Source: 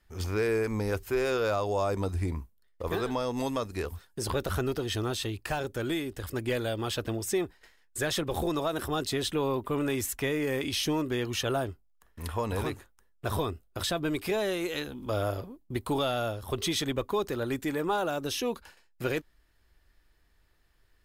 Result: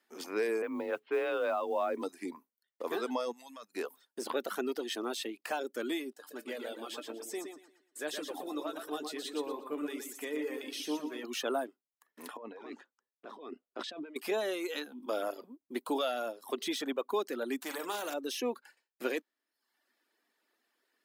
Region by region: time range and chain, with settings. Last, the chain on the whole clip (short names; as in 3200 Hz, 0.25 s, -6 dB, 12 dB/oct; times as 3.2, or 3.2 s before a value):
0.62–2.02 steep low-pass 3500 Hz + frequency shift +36 Hz + modulation noise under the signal 34 dB
3.32–3.75 level quantiser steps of 13 dB + bell 380 Hz -12 dB 1.2 oct
6.13–11.24 resonator 150 Hz, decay 0.19 s, mix 70% + feedback echo 0.118 s, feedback 40%, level -4 dB
12.37–14.16 negative-ratio compressor -38 dBFS + air absorption 160 m + three-band expander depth 70%
17.61–18.14 doubler 44 ms -10.5 dB + spectral compressor 2:1
whole clip: reverb removal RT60 0.73 s; de-esser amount 70%; elliptic high-pass 240 Hz, stop band 60 dB; gain -2 dB